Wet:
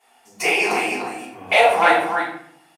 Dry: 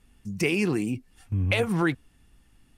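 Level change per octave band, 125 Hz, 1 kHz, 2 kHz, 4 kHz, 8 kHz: -17.0, +20.0, +12.0, +10.0, +9.0 dB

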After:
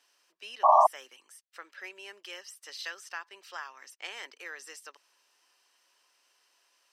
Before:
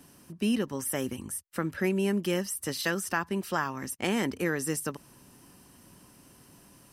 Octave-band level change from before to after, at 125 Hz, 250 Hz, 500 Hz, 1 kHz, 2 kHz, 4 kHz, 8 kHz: under -40 dB, -33.5 dB, -2.5 dB, +9.5 dB, -7.5 dB, -5.0 dB, -13.5 dB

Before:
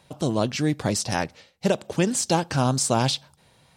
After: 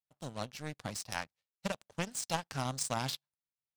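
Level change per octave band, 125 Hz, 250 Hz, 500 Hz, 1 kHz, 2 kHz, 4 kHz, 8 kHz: -16.0, -18.0, -16.5, -12.0, -10.0, -12.0, -12.5 dB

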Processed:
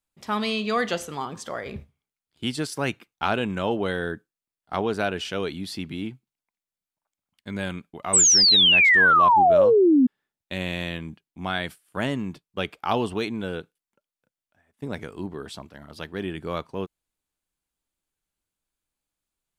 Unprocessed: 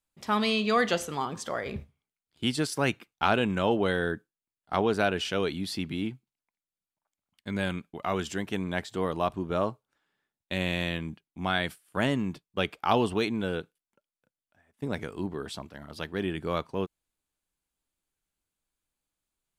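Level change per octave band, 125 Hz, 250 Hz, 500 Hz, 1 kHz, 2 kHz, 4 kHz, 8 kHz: 0.0, +3.5, +4.5, +7.0, +9.0, +12.0, +20.0 dB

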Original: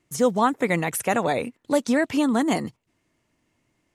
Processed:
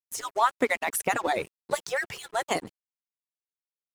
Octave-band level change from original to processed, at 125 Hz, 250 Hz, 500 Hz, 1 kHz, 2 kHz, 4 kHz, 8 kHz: -15.0, -15.5, -6.5, -2.0, -1.0, -1.5, -1.5 dB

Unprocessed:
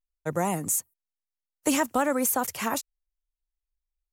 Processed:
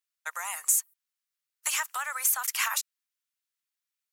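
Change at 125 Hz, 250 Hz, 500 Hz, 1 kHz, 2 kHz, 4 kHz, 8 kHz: under -40 dB, under -40 dB, -24.5 dB, -6.0 dB, +2.0 dB, +3.0 dB, +2.5 dB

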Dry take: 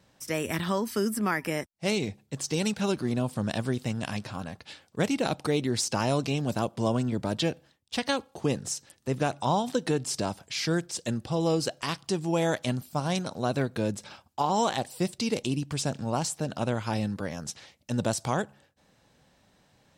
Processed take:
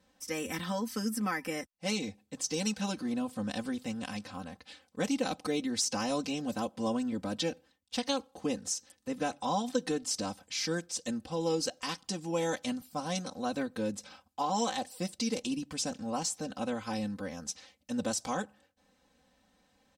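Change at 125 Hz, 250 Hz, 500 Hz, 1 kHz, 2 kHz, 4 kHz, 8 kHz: -12.5, -4.0, -6.0, -5.0, -5.5, -2.5, -1.0 dB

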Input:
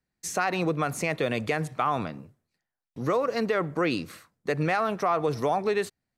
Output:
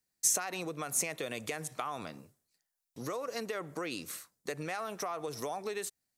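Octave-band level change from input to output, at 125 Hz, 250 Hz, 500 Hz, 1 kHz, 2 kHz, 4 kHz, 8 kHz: -15.0, -13.0, -11.5, -12.0, -10.0, -4.0, +7.0 dB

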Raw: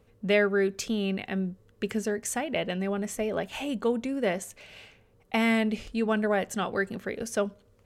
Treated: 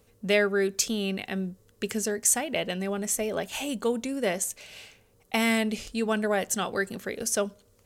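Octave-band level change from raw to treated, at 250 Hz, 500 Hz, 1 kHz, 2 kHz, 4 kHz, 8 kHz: -1.0, 0.0, 0.0, +1.0, +4.0, +11.0 dB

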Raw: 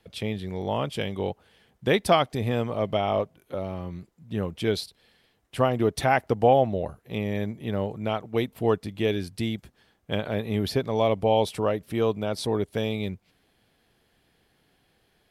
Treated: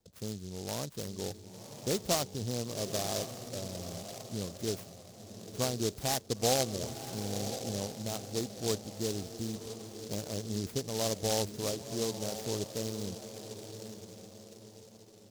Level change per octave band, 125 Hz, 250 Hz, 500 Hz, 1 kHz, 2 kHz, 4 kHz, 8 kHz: -8.5, -9.0, -10.5, -13.0, -12.5, -2.5, +9.5 dB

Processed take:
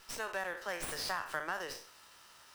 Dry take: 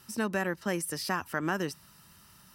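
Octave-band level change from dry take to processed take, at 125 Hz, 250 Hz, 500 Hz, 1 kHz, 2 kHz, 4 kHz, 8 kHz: -17.5, -19.5, -7.5, -4.0, -4.0, -1.5, -5.0 dB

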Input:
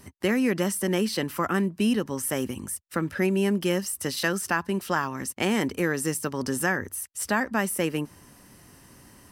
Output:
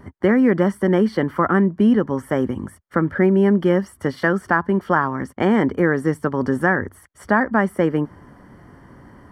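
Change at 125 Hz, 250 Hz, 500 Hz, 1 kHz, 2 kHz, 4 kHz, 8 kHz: +8.5 dB, +8.5 dB, +8.5 dB, +8.5 dB, +6.0 dB, -6.5 dB, under -15 dB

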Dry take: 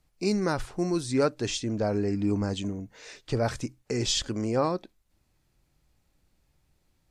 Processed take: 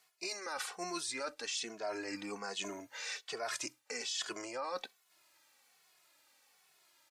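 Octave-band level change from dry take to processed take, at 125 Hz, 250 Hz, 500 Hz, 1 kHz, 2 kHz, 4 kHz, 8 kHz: -31.0, -19.0, -14.0, -8.0, -2.0, -6.0, -4.5 dB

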